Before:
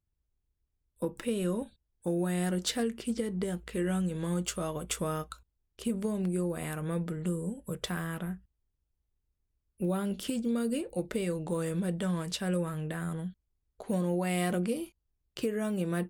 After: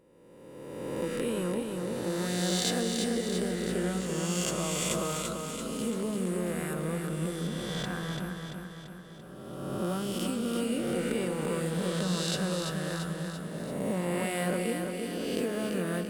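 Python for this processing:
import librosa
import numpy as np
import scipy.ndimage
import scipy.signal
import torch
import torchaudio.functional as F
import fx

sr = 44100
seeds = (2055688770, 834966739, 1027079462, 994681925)

y = fx.spec_swells(x, sr, rise_s=1.85)
y = fx.high_shelf(y, sr, hz=4800.0, db=-10.0, at=(7.47, 8.2))
y = fx.echo_feedback(y, sr, ms=339, feedback_pct=56, wet_db=-5)
y = y * 10.0 ** (-3.0 / 20.0)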